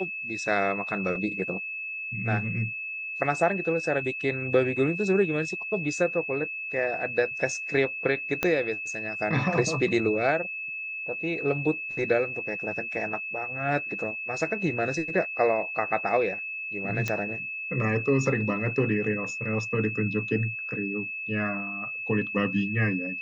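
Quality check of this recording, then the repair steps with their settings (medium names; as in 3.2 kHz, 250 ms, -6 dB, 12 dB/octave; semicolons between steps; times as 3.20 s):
whine 2.6 kHz -32 dBFS
8.43 s: pop -10 dBFS
17.08 s: pop -14 dBFS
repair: de-click; band-stop 2.6 kHz, Q 30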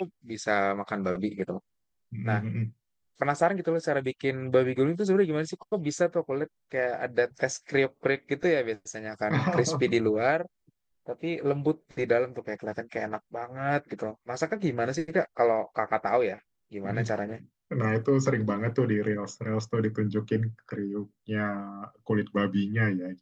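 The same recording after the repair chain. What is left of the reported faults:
8.43 s: pop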